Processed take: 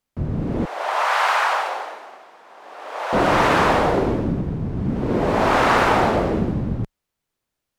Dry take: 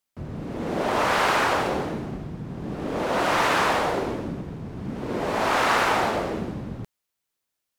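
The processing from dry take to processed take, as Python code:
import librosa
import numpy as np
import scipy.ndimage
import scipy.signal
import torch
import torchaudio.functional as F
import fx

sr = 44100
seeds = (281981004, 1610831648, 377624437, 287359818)

y = fx.highpass(x, sr, hz=720.0, slope=24, at=(0.65, 3.13))
y = fx.tilt_eq(y, sr, slope=-2.0)
y = y * librosa.db_to_amplitude(4.5)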